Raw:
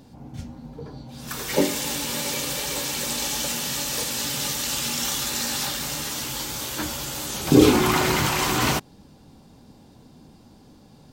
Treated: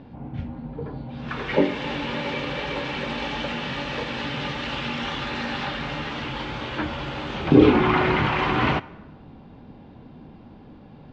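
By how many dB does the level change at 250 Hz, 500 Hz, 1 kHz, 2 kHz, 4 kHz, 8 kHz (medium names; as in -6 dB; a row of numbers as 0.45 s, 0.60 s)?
+1.0 dB, +1.5 dB, +2.0 dB, +2.0 dB, -5.0 dB, under -25 dB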